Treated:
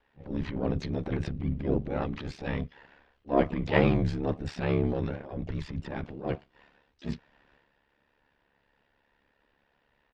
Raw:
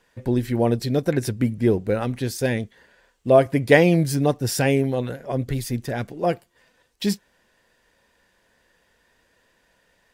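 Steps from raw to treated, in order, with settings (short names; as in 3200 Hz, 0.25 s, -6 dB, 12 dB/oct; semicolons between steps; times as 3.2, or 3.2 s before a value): transient shaper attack -12 dB, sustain +7 dB; LPF 3500 Hz 24 dB/oct; harmoniser -12 st -5 dB, -5 st -15 dB, +7 st -11 dB; ring modulator 35 Hz; gain -5.5 dB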